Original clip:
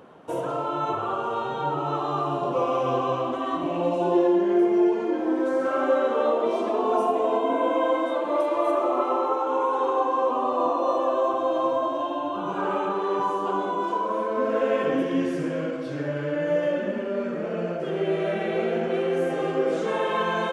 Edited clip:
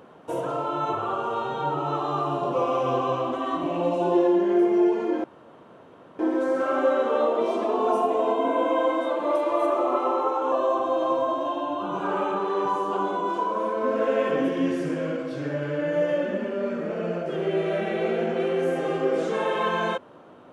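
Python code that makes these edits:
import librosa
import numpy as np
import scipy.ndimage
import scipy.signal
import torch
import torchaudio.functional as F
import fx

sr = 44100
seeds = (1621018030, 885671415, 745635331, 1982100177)

y = fx.edit(x, sr, fx.insert_room_tone(at_s=5.24, length_s=0.95),
    fx.cut(start_s=9.57, length_s=1.49), tone=tone)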